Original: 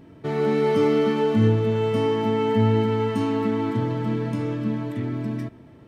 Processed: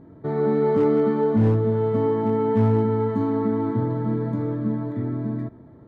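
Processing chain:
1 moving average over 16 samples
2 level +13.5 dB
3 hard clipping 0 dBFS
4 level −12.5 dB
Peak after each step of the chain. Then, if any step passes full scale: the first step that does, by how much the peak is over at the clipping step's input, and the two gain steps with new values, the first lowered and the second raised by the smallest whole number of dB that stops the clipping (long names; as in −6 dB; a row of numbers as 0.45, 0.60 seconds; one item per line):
−8.5, +5.0, 0.0, −12.5 dBFS
step 2, 5.0 dB
step 2 +8.5 dB, step 4 −7.5 dB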